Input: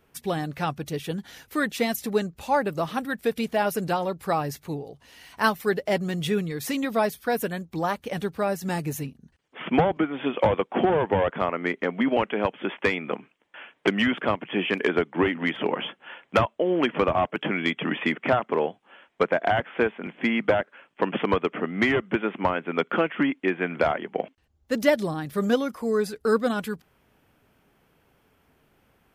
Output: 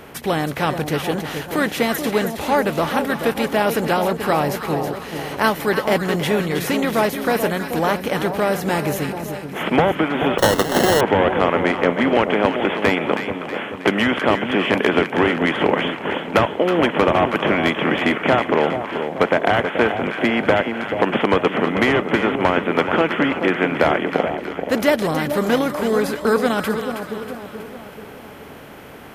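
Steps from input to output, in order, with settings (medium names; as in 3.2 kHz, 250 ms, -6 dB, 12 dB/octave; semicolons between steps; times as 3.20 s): spectral levelling over time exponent 0.6; two-band feedback delay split 1 kHz, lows 432 ms, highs 320 ms, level -7.5 dB; 10.38–11.01 s: sample-rate reducer 2.4 kHz, jitter 0%; trim +1.5 dB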